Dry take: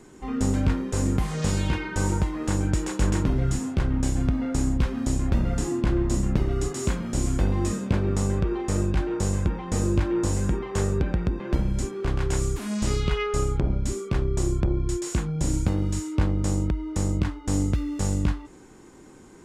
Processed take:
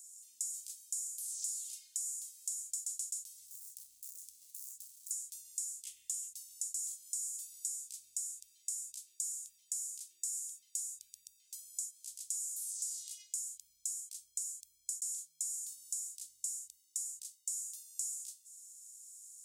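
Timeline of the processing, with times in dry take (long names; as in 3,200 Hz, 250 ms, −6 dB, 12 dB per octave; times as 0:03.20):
0:03.46–0:05.11: running median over 41 samples
0:05.84–0:06.28: flat-topped bell 2,500 Hz +13 dB 1.1 octaves
0:12.33–0:13.49: high-pass filter 250 Hz
whole clip: inverse Chebyshev high-pass filter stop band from 1,400 Hz, stop band 80 dB; downward compressor 10 to 1, threshold −49 dBFS; level +13 dB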